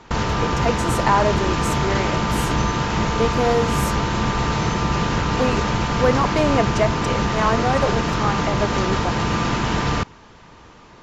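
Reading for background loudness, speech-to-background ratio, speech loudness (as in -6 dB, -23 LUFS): -21.5 LUFS, -2.5 dB, -24.0 LUFS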